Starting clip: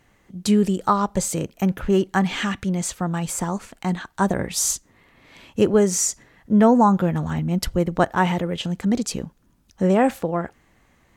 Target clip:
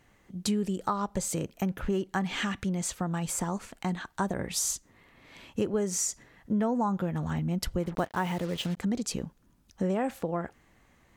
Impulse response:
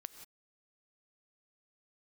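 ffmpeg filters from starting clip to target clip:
-filter_complex "[0:a]asettb=1/sr,asplit=3[link_01][link_02][link_03];[link_01]atrim=end=7.834[link_04];[link_02]atrim=start=7.83:end=8.77,asetpts=PTS-STARTPTS,afade=type=in:duration=0.004:curve=qsin,afade=type=out:start_time=0.936:duration=0.004:curve=qsin,acrusher=bits=5:mix=0:aa=0.5[link_05];[link_03]atrim=start=8.766[link_06];[link_04][link_05]acrossfade=duration=0.004:curve1=hsin:curve2=qsin[link_07];[link_07][link_06]acrossfade=duration=0.004:curve1=qsin:curve2=hsin,acompressor=threshold=-24dB:ratio=3,volume=-3.5dB"

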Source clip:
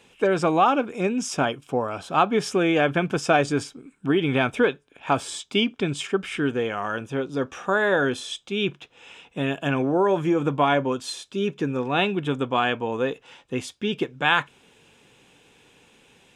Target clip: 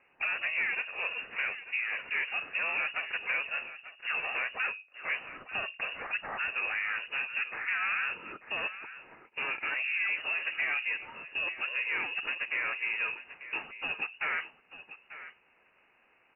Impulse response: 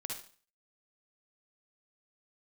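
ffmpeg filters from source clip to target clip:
-filter_complex "[0:a]bandreject=frequency=60:width_type=h:width=6,bandreject=frequency=120:width_type=h:width=6,bandreject=frequency=180:width_type=h:width=6,bandreject=frequency=240:width_type=h:width=6,bandreject=frequency=300:width_type=h:width=6,bandreject=frequency=360:width_type=h:width=6,bandreject=frequency=420:width_type=h:width=6,bandreject=frequency=480:width_type=h:width=6,bandreject=frequency=540:width_type=h:width=6,asplit=4[link_01][link_02][link_03][link_04];[link_02]asetrate=22050,aresample=44100,atempo=2,volume=-10dB[link_05];[link_03]asetrate=35002,aresample=44100,atempo=1.25992,volume=-4dB[link_06];[link_04]asetrate=58866,aresample=44100,atempo=0.749154,volume=-15dB[link_07];[link_01][link_05][link_06][link_07]amix=inputs=4:normalize=0,lowshelf=frequency=370:gain=-3.5,acrossover=split=380|1700[link_08][link_09][link_10];[link_08]acompressor=threshold=-37dB:ratio=4[link_11];[link_09]acompressor=threshold=-29dB:ratio=4[link_12];[link_10]acompressor=threshold=-36dB:ratio=4[link_13];[link_11][link_12][link_13]amix=inputs=3:normalize=0,asplit=2[link_14][link_15];[link_15]alimiter=limit=-24dB:level=0:latency=1:release=200,volume=2dB[link_16];[link_14][link_16]amix=inputs=2:normalize=0,agate=range=-9dB:threshold=-35dB:ratio=16:detection=peak,asplit=2[link_17][link_18];[link_18]highpass=frequency=720:poles=1,volume=11dB,asoftclip=type=tanh:threshold=-10dB[link_19];[link_17][link_19]amix=inputs=2:normalize=0,lowpass=frequency=1200:poles=1,volume=-6dB,asplit=2[link_20][link_21];[link_21]aecho=0:1:892:0.2[link_22];[link_20][link_22]amix=inputs=2:normalize=0,lowpass=frequency=2600:width_type=q:width=0.5098,lowpass=frequency=2600:width_type=q:width=0.6013,lowpass=frequency=2600:width_type=q:width=0.9,lowpass=frequency=2600:width_type=q:width=2.563,afreqshift=-3000,volume=-8.5dB"

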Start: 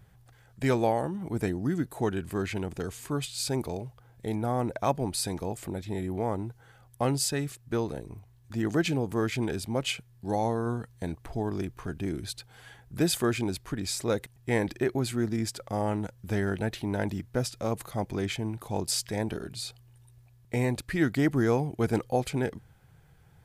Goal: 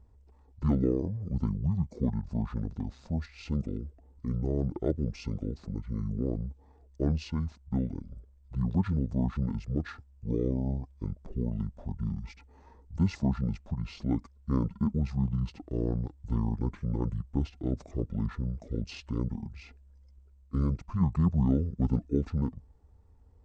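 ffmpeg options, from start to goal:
ffmpeg -i in.wav -af "asetrate=24750,aresample=44100,atempo=1.7818,tiltshelf=frequency=970:gain=8.5,volume=-8dB" out.wav

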